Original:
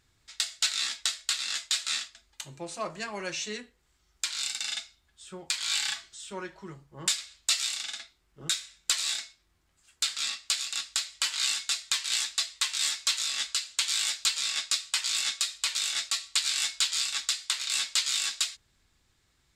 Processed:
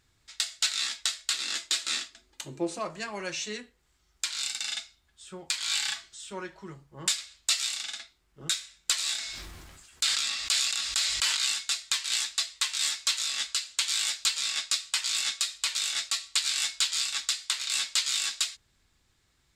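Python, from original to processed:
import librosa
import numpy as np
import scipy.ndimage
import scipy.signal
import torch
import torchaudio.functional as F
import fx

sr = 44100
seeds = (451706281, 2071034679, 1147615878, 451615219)

y = fx.peak_eq(x, sr, hz=330.0, db=12.5, octaves=1.3, at=(1.33, 2.79))
y = fx.sustainer(y, sr, db_per_s=29.0, at=(9.17, 11.37))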